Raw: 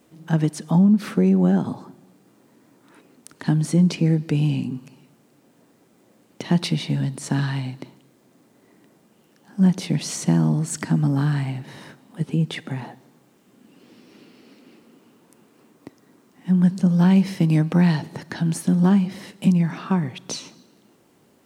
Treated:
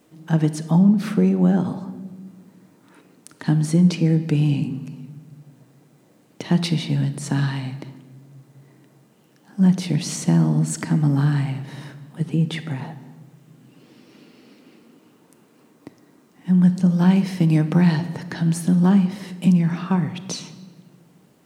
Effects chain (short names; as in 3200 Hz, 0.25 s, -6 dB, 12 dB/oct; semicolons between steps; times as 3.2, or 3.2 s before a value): shoebox room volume 1300 m³, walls mixed, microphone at 0.51 m